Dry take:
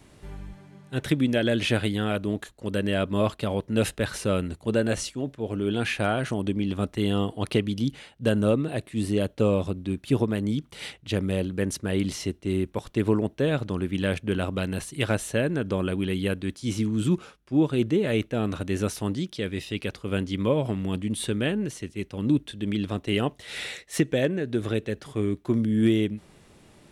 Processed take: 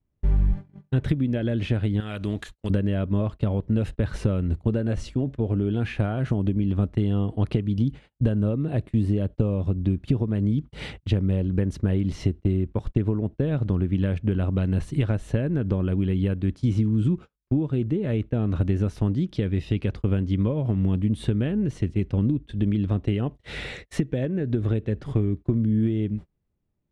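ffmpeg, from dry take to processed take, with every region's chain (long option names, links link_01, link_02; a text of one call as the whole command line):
ffmpeg -i in.wav -filter_complex "[0:a]asettb=1/sr,asplit=3[link_01][link_02][link_03];[link_01]atrim=end=2.004[link_04];[link_02]atrim=start=2:end=2.7,asetpts=PTS-STARTPTS,afade=type=in:duration=0.004:curve=qsin,afade=type=out:start_time=0.696:duration=0.004:curve=qsin,tiltshelf=frequency=1300:gain=-9.5,acompressor=threshold=-33dB:ratio=2:attack=3.2:release=140:knee=1:detection=peak[link_05];[link_03]atrim=start=2.696[link_06];[link_04][link_05]acrossfade=duration=0.004:curve1=hsin:curve2=qsin[link_07];[link_07][link_06]acrossfade=duration=0.004:curve1=qsin:curve2=hsin,acompressor=threshold=-32dB:ratio=12,agate=range=-38dB:threshold=-45dB:ratio=16:detection=peak,aemphasis=mode=reproduction:type=riaa,volume=4.5dB" out.wav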